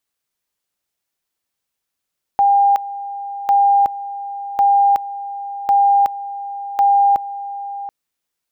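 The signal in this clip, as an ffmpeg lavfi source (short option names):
-f lavfi -i "aevalsrc='pow(10,(-9.5-15*gte(mod(t,1.1),0.37))/20)*sin(2*PI*802*t)':d=5.5:s=44100"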